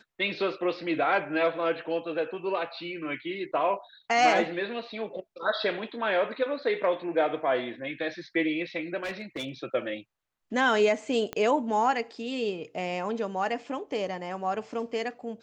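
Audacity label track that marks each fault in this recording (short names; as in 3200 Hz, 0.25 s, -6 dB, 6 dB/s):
9.030000	9.490000	clipped -29.5 dBFS
11.330000	11.330000	pop -18 dBFS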